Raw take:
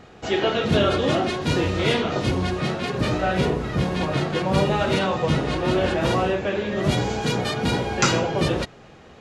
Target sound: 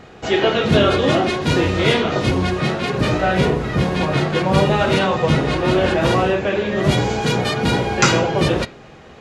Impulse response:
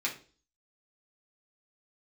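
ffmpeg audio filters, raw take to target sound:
-filter_complex "[0:a]asplit=2[s0][s1];[1:a]atrim=start_sample=2205,lowpass=4600[s2];[s1][s2]afir=irnorm=-1:irlink=0,volume=0.168[s3];[s0][s3]amix=inputs=2:normalize=0,volume=1.58"

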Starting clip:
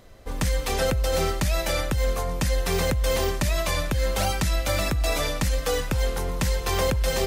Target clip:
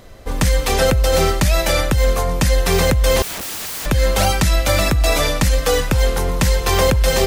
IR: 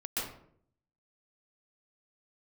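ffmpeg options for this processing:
-filter_complex "[0:a]asettb=1/sr,asplit=3[s0][s1][s2];[s0]atrim=end=3.224[s3];[s1]atrim=start=3.22:end=3.86,asetpts=PTS-STARTPTS,afade=t=in:d=0.004:c=qsin,afade=t=out:st=0.636:d=0.004:c=qsin,aeval=exprs='(mod(35.5*val(0)+1,2)-1)/35.5':c=same[s4];[s2]atrim=start=3.856[s5];[s3][s4]acrossfade=d=0.004:c1=hsin:c2=qsin[s6];[s6][s5]acrossfade=d=0.004:c1=qsin:c2=hsin,volume=2.66"

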